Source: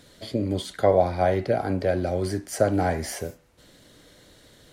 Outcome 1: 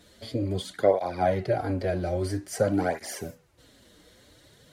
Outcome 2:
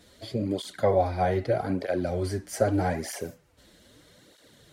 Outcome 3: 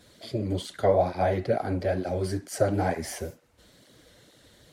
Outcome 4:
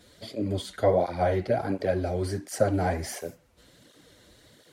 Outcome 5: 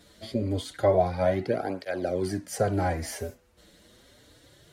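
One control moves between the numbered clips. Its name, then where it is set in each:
tape flanging out of phase, nulls at: 0.5, 0.8, 2.2, 1.4, 0.27 Hz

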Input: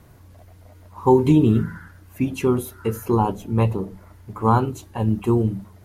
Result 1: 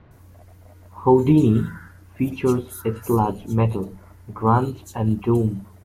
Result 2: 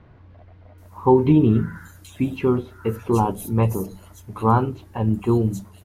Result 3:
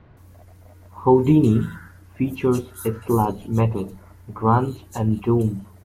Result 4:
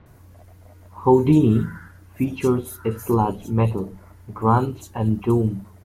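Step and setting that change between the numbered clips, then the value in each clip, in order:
bands offset in time, time: 110, 780, 170, 60 ms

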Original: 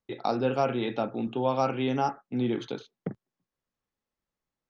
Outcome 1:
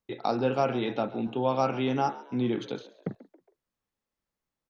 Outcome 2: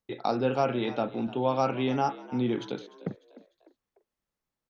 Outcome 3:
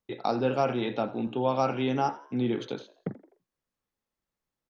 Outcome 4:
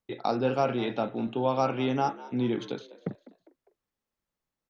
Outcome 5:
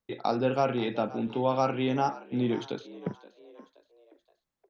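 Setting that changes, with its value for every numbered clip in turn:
frequency-shifting echo, time: 137, 299, 84, 201, 524 ms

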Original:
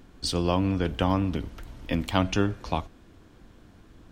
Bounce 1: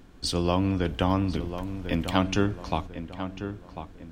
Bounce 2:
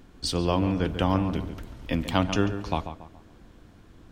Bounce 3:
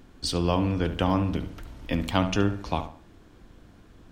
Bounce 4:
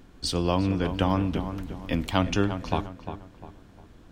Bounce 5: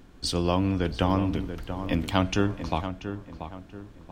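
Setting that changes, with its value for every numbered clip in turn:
darkening echo, time: 1046, 140, 70, 351, 684 ms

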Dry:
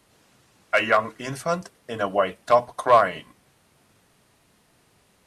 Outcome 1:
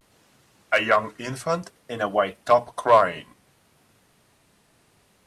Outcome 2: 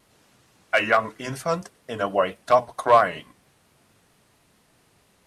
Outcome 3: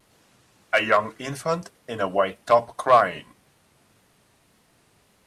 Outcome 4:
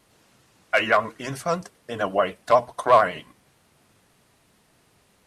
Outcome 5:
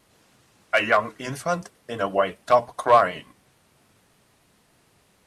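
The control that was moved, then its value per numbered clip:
vibrato, rate: 0.59, 4.4, 1.8, 11, 6.8 Hz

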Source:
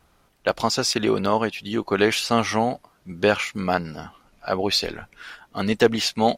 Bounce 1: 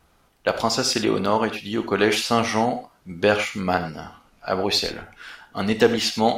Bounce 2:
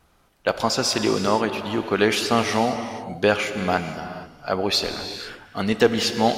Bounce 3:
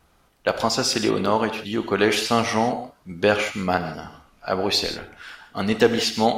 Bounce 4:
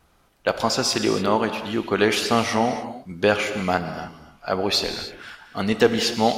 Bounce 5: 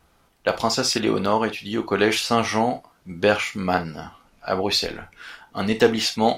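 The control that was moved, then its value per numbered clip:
non-linear reverb, gate: 130, 510, 190, 320, 80 ms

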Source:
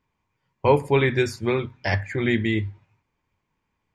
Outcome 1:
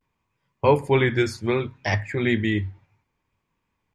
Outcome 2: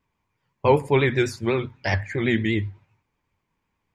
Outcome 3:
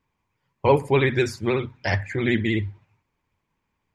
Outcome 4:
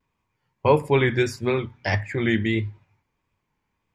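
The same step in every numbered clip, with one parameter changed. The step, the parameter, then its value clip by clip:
vibrato, rate: 0.64, 8, 16, 1.6 Hz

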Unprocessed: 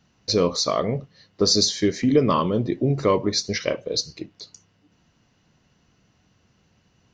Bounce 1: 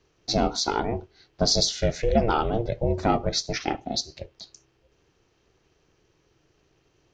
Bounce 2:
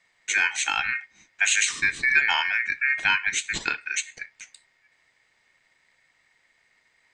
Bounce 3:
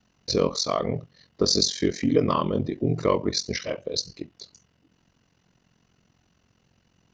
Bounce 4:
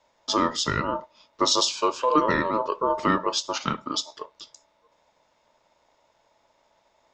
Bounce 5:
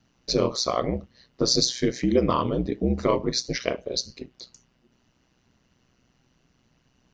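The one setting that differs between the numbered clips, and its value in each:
ring modulator, frequency: 230, 2000, 22, 760, 62 Hz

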